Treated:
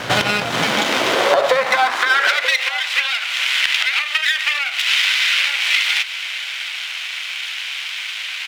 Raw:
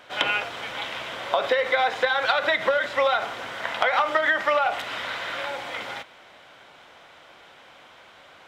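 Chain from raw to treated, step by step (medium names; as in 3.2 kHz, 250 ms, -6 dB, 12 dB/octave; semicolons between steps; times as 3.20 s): bass shelf 160 Hz +9 dB; half-wave rectifier; compression 12:1, threshold -38 dBFS, peak gain reduction 20.5 dB; high-pass sweep 120 Hz -> 2.5 kHz, 0.35–2.55 s; echo from a far wall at 160 m, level -15 dB; loudness maximiser +27.5 dB; trim -1 dB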